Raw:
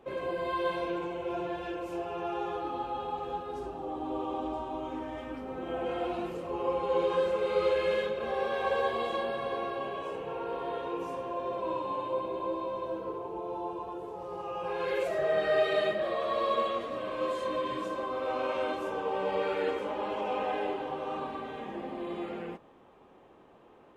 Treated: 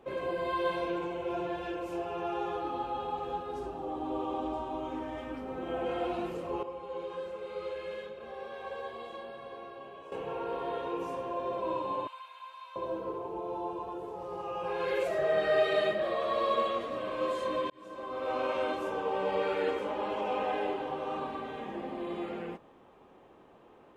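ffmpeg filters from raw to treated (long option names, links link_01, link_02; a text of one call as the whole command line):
ffmpeg -i in.wav -filter_complex "[0:a]asettb=1/sr,asplit=3[link_01][link_02][link_03];[link_01]atrim=end=12.074[link_04];[link_02]atrim=start=12.07:end=12.76,asetpts=PTS-STARTPTS,afade=type=in:duration=0.004:curve=qsin,afade=type=out:start_time=0.686:duration=0.004:curve=qsin,highpass=frequency=1300:width=0.5412,highpass=frequency=1300:width=1.3066[link_05];[link_03]atrim=start=12.756[link_06];[link_04][link_05]acrossfade=duration=0.004:curve1=hsin:curve2=qsin[link_07];[link_07][link_06]acrossfade=duration=0.004:curve1=qsin:curve2=hsin,asplit=4[link_08][link_09][link_10][link_11];[link_08]atrim=end=6.632[link_12];[link_09]atrim=start=6.628:end=10.122,asetpts=PTS-STARTPTS,volume=-11dB[link_13];[link_10]atrim=start=10.118:end=17.7,asetpts=PTS-STARTPTS,afade=type=out:start_time=7.578:duration=0.004:curve=hsin[link_14];[link_11]atrim=start=17.7,asetpts=PTS-STARTPTS,afade=type=in:duration=0.65[link_15];[link_12][link_13]acrossfade=duration=0.004:curve1=hsin:curve2=hsin[link_16];[link_14][link_15]concat=n=2:v=0:a=1[link_17];[link_16][link_17]acrossfade=duration=0.004:curve1=hsin:curve2=hsin" out.wav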